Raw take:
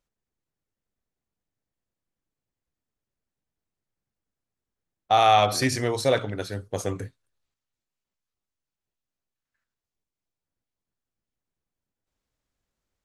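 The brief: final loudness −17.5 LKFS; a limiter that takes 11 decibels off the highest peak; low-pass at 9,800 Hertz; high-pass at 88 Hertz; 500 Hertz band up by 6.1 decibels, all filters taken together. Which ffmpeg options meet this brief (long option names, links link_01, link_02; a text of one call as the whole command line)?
ffmpeg -i in.wav -af "highpass=88,lowpass=9800,equalizer=frequency=500:width_type=o:gain=7.5,volume=9dB,alimiter=limit=-6.5dB:level=0:latency=1" out.wav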